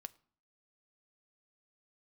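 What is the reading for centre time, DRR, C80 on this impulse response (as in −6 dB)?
2 ms, 11.5 dB, 26.0 dB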